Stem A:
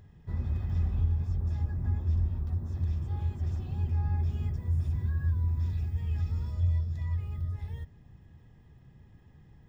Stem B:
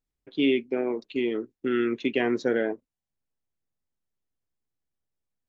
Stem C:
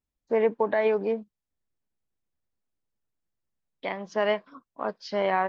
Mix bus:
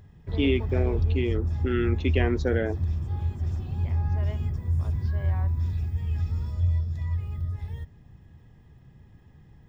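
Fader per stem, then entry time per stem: +3.0 dB, -1.5 dB, -18.0 dB; 0.00 s, 0.00 s, 0.00 s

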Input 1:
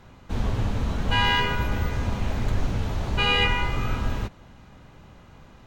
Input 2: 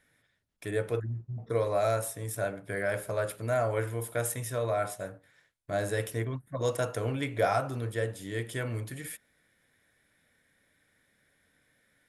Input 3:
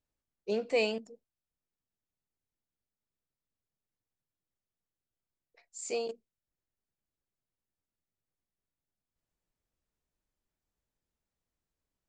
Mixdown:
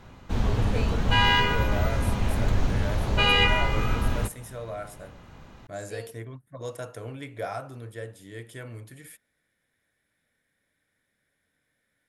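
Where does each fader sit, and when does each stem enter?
+1.0 dB, -6.5 dB, -8.0 dB; 0.00 s, 0.00 s, 0.00 s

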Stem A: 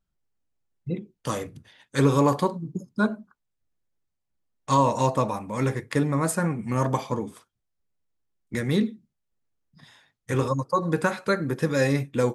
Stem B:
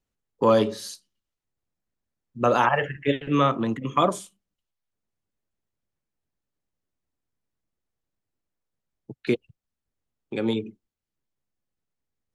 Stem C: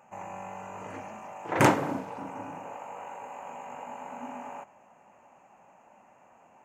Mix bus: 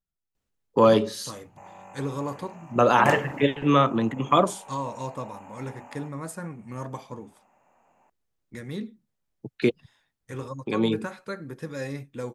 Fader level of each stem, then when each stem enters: -11.0 dB, +1.5 dB, -6.0 dB; 0.00 s, 0.35 s, 1.45 s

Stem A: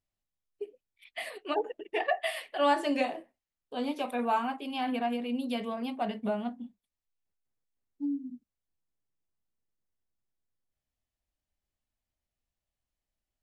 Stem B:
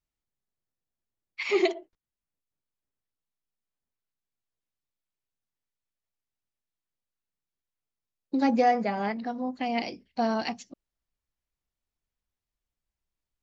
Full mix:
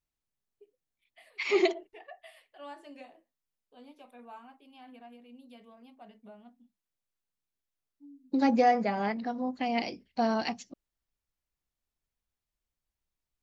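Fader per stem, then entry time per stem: -20.0 dB, -1.0 dB; 0.00 s, 0.00 s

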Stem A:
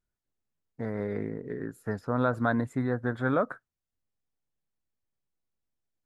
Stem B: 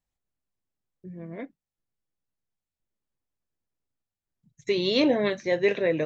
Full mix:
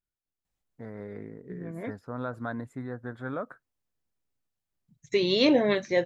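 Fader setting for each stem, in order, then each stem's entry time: -8.0 dB, +0.5 dB; 0.00 s, 0.45 s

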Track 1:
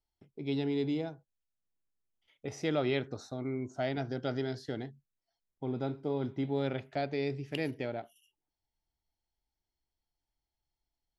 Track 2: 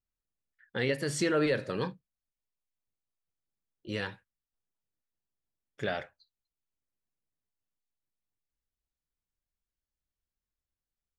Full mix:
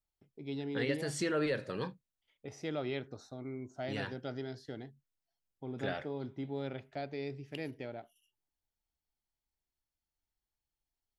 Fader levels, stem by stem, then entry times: -6.5 dB, -5.0 dB; 0.00 s, 0.00 s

